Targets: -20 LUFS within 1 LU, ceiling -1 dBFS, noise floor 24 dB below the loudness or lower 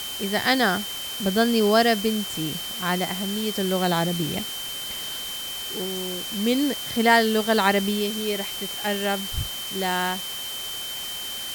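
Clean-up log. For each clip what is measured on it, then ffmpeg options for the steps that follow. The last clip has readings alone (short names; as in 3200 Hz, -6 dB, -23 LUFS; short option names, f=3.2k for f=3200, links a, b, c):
steady tone 3100 Hz; tone level -32 dBFS; noise floor -33 dBFS; noise floor target -48 dBFS; loudness -24.0 LUFS; peak -5.5 dBFS; loudness target -20.0 LUFS
-> -af "bandreject=f=3.1k:w=30"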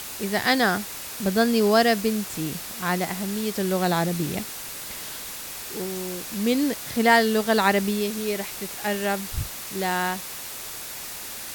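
steady tone none; noise floor -36 dBFS; noise floor target -49 dBFS
-> -af "afftdn=nr=13:nf=-36"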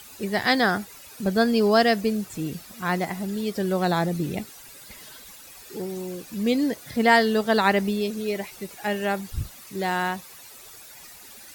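noise floor -46 dBFS; noise floor target -49 dBFS
-> -af "afftdn=nr=6:nf=-46"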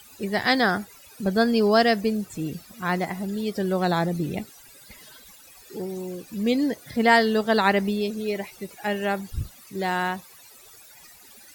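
noise floor -50 dBFS; loudness -24.5 LUFS; peak -6.0 dBFS; loudness target -20.0 LUFS
-> -af "volume=4.5dB"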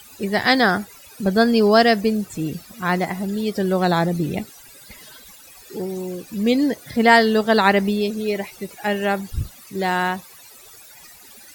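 loudness -20.0 LUFS; peak -1.5 dBFS; noise floor -45 dBFS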